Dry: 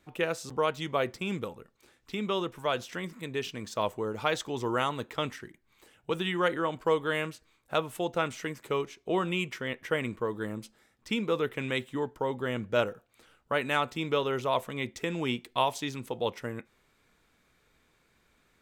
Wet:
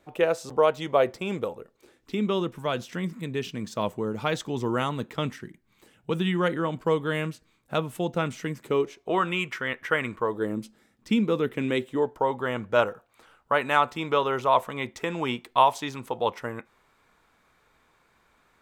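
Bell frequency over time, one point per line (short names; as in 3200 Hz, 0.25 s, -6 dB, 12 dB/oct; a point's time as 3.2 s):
bell +9.5 dB 1.5 oct
1.48 s 610 Hz
2.57 s 180 Hz
8.63 s 180 Hz
9.19 s 1400 Hz
10.12 s 1400 Hz
10.62 s 220 Hz
11.52 s 220 Hz
12.35 s 980 Hz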